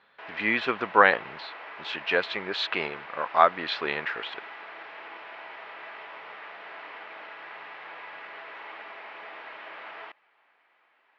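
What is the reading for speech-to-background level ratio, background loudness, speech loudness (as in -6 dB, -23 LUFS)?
16.0 dB, -41.5 LUFS, -25.5 LUFS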